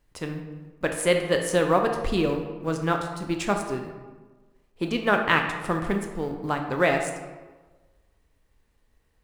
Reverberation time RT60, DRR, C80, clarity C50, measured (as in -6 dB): 1.3 s, 3.5 dB, 8.0 dB, 6.0 dB